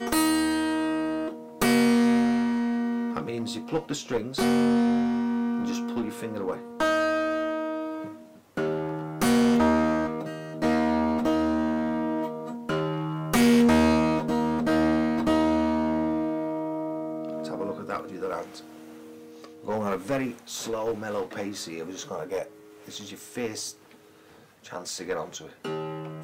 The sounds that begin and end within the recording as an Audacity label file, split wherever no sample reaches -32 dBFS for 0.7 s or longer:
19.440000	23.700000	sound